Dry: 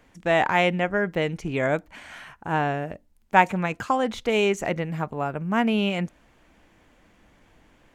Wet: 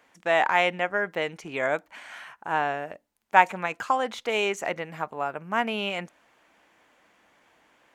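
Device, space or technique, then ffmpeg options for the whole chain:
filter by subtraction: -filter_complex "[0:a]asplit=2[link_01][link_02];[link_02]lowpass=940,volume=-1[link_03];[link_01][link_03]amix=inputs=2:normalize=0,volume=-1.5dB"

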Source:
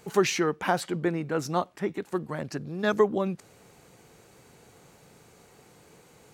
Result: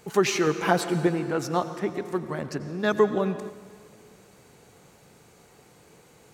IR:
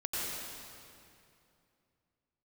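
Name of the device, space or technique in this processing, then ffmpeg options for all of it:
keyed gated reverb: -filter_complex "[0:a]asettb=1/sr,asplit=3[link_01][link_02][link_03];[link_01]atrim=end=0.464[link_04];[link_02]atrim=start=0.46:end=1.07,asetpts=PTS-STARTPTS,afade=type=in:duration=0.004:curve=qsin,afade=type=out:start_time=0.606:duration=0.004:curve=qsin,aecho=1:1:6:0.77,atrim=end_sample=26901[link_05];[link_03]atrim=start=1.066[link_06];[link_04][link_05]acrossfade=duration=0.004:curve1=hsin:curve2=qsin[link_07];[link_07][link_06]acrossfade=duration=0.004:curve1=qsin:curve2=hsin,asplit=3[link_08][link_09][link_10];[1:a]atrim=start_sample=2205[link_11];[link_09][link_11]afir=irnorm=-1:irlink=0[link_12];[link_10]apad=whole_len=279195[link_13];[link_12][link_13]sidechaingate=range=-7dB:threshold=-49dB:ratio=16:detection=peak,volume=-14dB[link_14];[link_08][link_14]amix=inputs=2:normalize=0"

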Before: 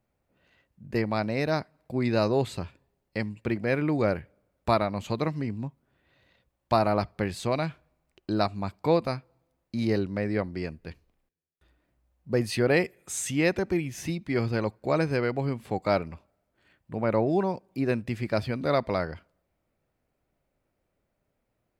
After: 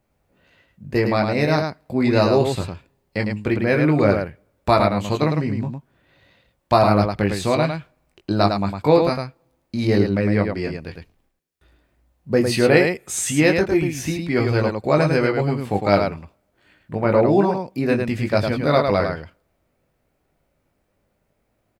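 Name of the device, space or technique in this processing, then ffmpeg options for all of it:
slapback doubling: -filter_complex "[0:a]asplit=3[link_01][link_02][link_03];[link_02]adelay=20,volume=-5.5dB[link_04];[link_03]adelay=106,volume=-5dB[link_05];[link_01][link_04][link_05]amix=inputs=3:normalize=0,volume=6.5dB"

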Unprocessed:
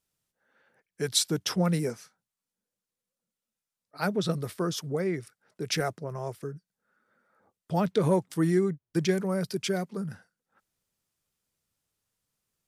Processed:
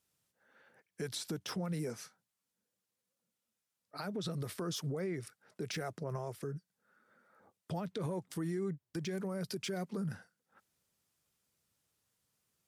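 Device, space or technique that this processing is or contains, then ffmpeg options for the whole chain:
podcast mastering chain: -af "highpass=61,deesser=0.7,acompressor=threshold=-31dB:ratio=3,alimiter=level_in=7.5dB:limit=-24dB:level=0:latency=1:release=106,volume=-7.5dB,volume=2dB" -ar 44100 -c:a libmp3lame -b:a 112k

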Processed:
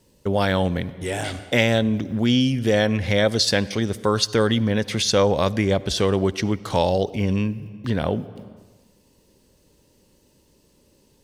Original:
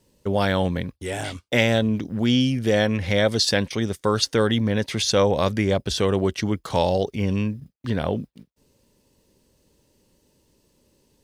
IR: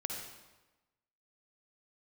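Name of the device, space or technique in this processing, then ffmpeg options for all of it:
ducked reverb: -filter_complex "[0:a]asplit=3[link_01][link_02][link_03];[1:a]atrim=start_sample=2205[link_04];[link_02][link_04]afir=irnorm=-1:irlink=0[link_05];[link_03]apad=whole_len=495652[link_06];[link_05][link_06]sidechaincompress=threshold=-29dB:ratio=12:attack=16:release=401,volume=-5dB[link_07];[link_01][link_07]amix=inputs=2:normalize=0"

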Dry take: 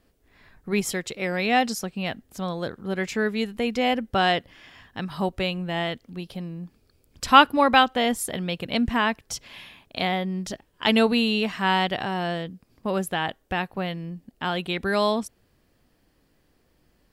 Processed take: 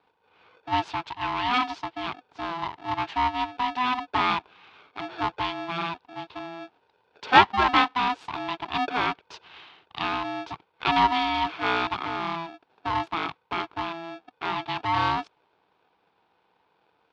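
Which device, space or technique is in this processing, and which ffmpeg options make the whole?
ring modulator pedal into a guitar cabinet: -af "aeval=exprs='val(0)*sgn(sin(2*PI*500*n/s))':channel_layout=same,highpass=98,equalizer=frequency=130:width_type=q:width=4:gain=-5,equalizer=frequency=230:width_type=q:width=4:gain=-10,equalizer=frequency=550:width_type=q:width=4:gain=-10,equalizer=frequency=920:width_type=q:width=4:gain=9,equalizer=frequency=1900:width_type=q:width=4:gain=-4,lowpass=frequency=3800:width=0.5412,lowpass=frequency=3800:width=1.3066,volume=-2.5dB"

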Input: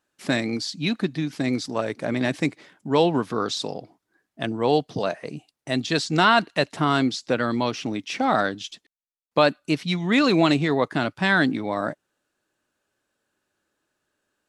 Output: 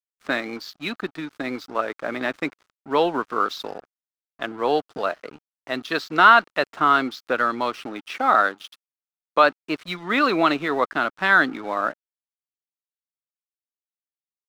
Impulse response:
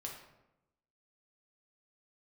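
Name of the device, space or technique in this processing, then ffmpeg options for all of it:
pocket radio on a weak battery: -filter_complex "[0:a]highpass=320,lowpass=3800,aeval=exprs='sgn(val(0))*max(abs(val(0))-0.00631,0)':channel_layout=same,equalizer=frequency=1300:width_type=o:width=0.54:gain=10,asettb=1/sr,asplit=3[link_01][link_02][link_03];[link_01]atrim=end=8.084[link_04];[link_02]atrim=start=8.08:end=9.44,asetpts=PTS-STARTPTS,afade=type=in:duration=0.004:curve=qsin,afade=type=out:start_time=1.356:duration=0.004:curve=qsin,highpass=frequency=180:poles=1[link_05];[link_03]atrim=start=9.436[link_06];[link_04][link_05]acrossfade=duration=0.004:curve1=hsin:curve2=qsin[link_07];[link_07][link_06]acrossfade=duration=0.004:curve1=qsin:curve2=hsin"

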